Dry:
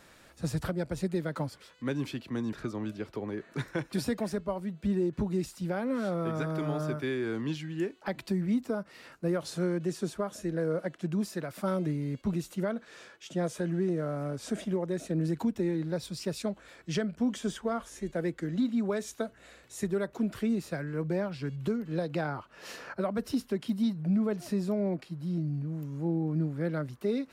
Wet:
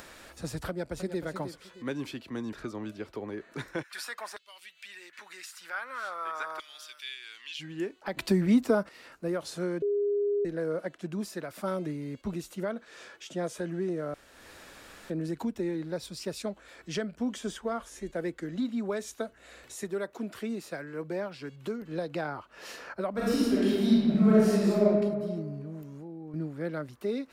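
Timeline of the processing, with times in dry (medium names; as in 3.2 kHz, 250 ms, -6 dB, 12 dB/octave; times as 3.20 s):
0.68–1.24 s: echo throw 310 ms, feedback 20%, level -9.5 dB
3.82–7.59 s: LFO high-pass saw down 0.93 Hz -> 0.16 Hz 980–3500 Hz
8.17–8.89 s: gain +9 dB
9.82–10.45 s: bleep 408 Hz -23.5 dBFS
14.14–15.10 s: room tone
19.76–21.82 s: high-pass 220 Hz 6 dB/octave
23.10–24.83 s: reverb throw, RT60 1.7 s, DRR -9 dB
25.82–26.34 s: level held to a coarse grid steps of 13 dB
whole clip: peaking EQ 140 Hz -7 dB 1.3 oct; upward compressor, threshold -41 dBFS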